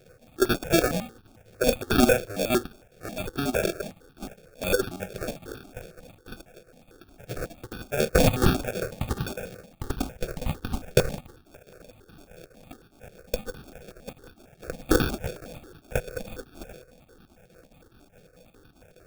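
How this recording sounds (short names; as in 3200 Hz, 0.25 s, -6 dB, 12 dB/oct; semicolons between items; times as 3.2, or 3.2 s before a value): a buzz of ramps at a fixed pitch in blocks of 8 samples; chopped level 4.8 Hz, depth 60%, duty 80%; aliases and images of a low sample rate 1000 Hz, jitter 0%; notches that jump at a steady rate 11 Hz 270–2100 Hz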